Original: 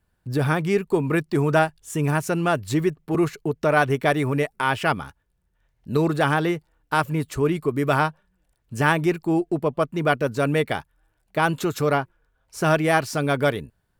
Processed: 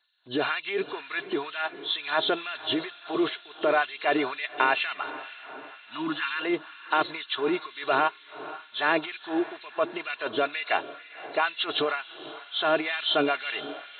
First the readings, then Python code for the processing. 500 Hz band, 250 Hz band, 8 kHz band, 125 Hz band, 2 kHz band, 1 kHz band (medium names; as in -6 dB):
-6.5 dB, -8.5 dB, under -40 dB, -26.0 dB, -2.5 dB, -4.0 dB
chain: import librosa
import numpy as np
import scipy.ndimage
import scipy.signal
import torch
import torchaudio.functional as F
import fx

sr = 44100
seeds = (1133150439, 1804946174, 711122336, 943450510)

p1 = fx.freq_compress(x, sr, knee_hz=2600.0, ratio=4.0)
p2 = p1 + 0.41 * np.pad(p1, (int(2.9 * sr / 1000.0), 0))[:len(p1)]
p3 = fx.over_compress(p2, sr, threshold_db=-23.0, ratio=-0.5)
p4 = p2 + (p3 * librosa.db_to_amplitude(2.5))
p5 = fx.spec_repair(p4, sr, seeds[0], start_s=5.8, length_s=0.6, low_hz=330.0, high_hz=850.0, source='both')
p6 = p5 + fx.echo_diffused(p5, sr, ms=510, feedback_pct=55, wet_db=-15, dry=0)
p7 = fx.filter_lfo_highpass(p6, sr, shape='sine', hz=2.1, low_hz=360.0, high_hz=2400.0, q=0.95)
y = p7 * librosa.db_to_amplitude(-7.0)